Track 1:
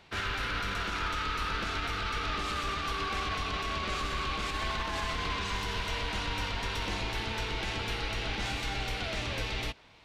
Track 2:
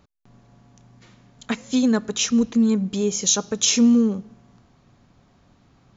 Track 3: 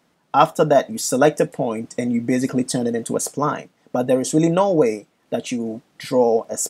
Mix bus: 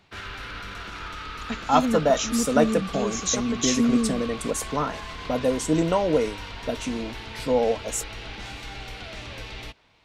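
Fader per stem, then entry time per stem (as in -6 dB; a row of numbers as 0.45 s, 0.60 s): -3.5 dB, -6.5 dB, -5.5 dB; 0.00 s, 0.00 s, 1.35 s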